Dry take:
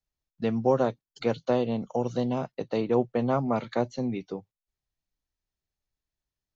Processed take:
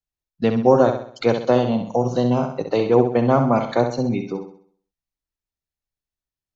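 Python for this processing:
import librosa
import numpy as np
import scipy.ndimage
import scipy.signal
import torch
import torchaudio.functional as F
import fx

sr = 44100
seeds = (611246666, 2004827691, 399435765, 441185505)

y = fx.noise_reduce_blind(x, sr, reduce_db=13)
y = fx.room_flutter(y, sr, wall_m=11.2, rt60_s=0.53)
y = y * 10.0 ** (8.5 / 20.0)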